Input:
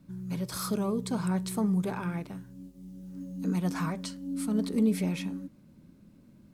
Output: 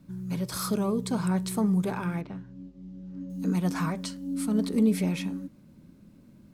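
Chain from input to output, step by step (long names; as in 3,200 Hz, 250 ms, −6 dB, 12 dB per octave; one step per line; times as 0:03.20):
0:02.21–0:03.30: high-frequency loss of the air 170 metres
level +2.5 dB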